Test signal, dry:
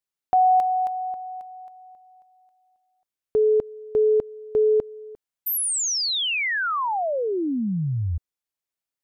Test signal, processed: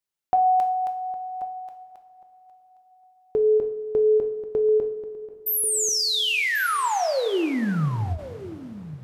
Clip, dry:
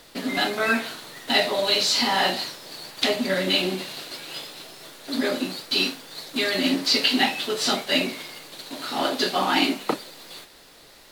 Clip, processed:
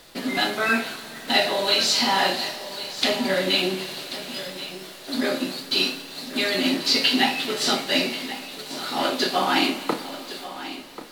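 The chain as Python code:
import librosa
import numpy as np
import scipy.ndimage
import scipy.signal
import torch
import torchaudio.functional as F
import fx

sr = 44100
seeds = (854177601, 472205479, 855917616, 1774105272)

y = x + 10.0 ** (-14.0 / 20.0) * np.pad(x, (int(1087 * sr / 1000.0), 0))[:len(x)]
y = fx.rev_double_slope(y, sr, seeds[0], early_s=0.48, late_s=4.6, knee_db=-18, drr_db=6.0)
y = fx.end_taper(y, sr, db_per_s=180.0)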